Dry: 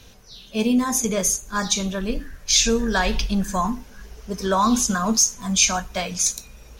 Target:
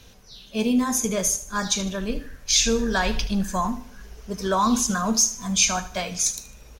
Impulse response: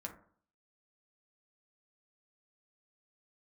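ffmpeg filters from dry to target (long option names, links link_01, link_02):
-af "aecho=1:1:76|152|228|304:0.178|0.0694|0.027|0.0105,volume=-2dB"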